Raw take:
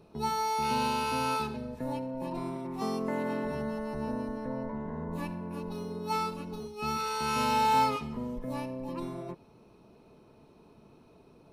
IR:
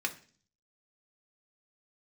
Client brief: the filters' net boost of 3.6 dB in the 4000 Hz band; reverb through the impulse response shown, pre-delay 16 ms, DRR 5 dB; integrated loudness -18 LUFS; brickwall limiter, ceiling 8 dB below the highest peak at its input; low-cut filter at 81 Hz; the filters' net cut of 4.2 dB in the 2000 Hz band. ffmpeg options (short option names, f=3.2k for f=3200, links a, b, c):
-filter_complex "[0:a]highpass=81,equalizer=f=2k:t=o:g=-8.5,equalizer=f=4k:t=o:g=6.5,alimiter=level_in=0.5dB:limit=-24dB:level=0:latency=1,volume=-0.5dB,asplit=2[a][b];[1:a]atrim=start_sample=2205,adelay=16[c];[b][c]afir=irnorm=-1:irlink=0,volume=-10dB[d];[a][d]amix=inputs=2:normalize=0,volume=15.5dB"